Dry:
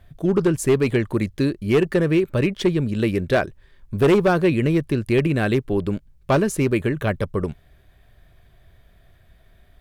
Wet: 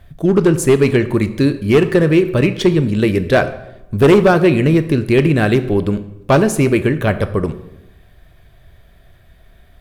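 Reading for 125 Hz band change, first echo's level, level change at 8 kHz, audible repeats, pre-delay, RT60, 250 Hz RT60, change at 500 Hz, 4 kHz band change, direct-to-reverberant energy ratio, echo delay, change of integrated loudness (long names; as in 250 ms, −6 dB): +6.5 dB, no echo audible, +6.5 dB, no echo audible, 10 ms, 0.90 s, 1.1 s, +6.5 dB, +6.5 dB, 10.5 dB, no echo audible, +6.5 dB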